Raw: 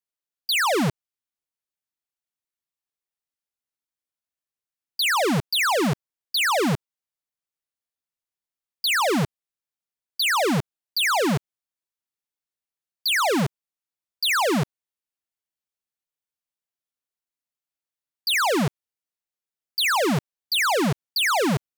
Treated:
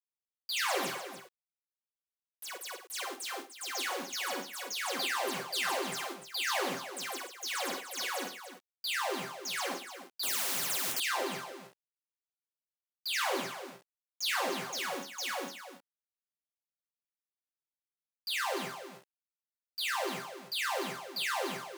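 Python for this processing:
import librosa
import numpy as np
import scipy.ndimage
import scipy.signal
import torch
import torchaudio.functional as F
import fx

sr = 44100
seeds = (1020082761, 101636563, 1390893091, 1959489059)

p1 = fx.resonator_bank(x, sr, root=48, chord='sus4', decay_s=0.22)
p2 = fx.echo_pitch(p1, sr, ms=219, semitones=6, count=3, db_per_echo=-3.0)
p3 = fx.quant_dither(p2, sr, seeds[0], bits=8, dither='none')
p4 = scipy.signal.sosfilt(scipy.signal.butter(2, 340.0, 'highpass', fs=sr, output='sos'), p3)
p5 = p4 + fx.echo_multitap(p4, sr, ms=(47, 105, 296), db=(-10.0, -17.5, -11.0), dry=0)
y = fx.spectral_comp(p5, sr, ratio=10.0, at=(10.23, 11.0))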